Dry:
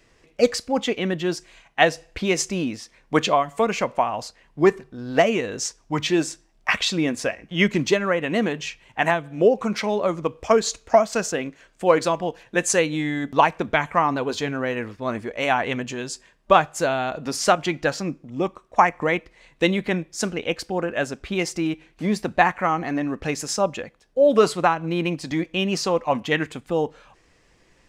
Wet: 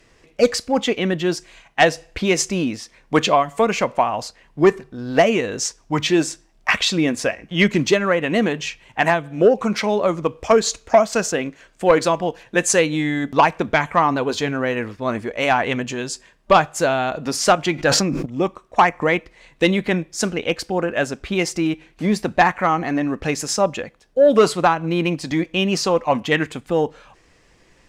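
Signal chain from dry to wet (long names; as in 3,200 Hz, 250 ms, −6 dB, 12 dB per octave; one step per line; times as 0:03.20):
sine wavefolder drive 4 dB, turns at −1 dBFS
0:17.75–0:18.26: level that may fall only so fast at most 29 dB per second
level −4 dB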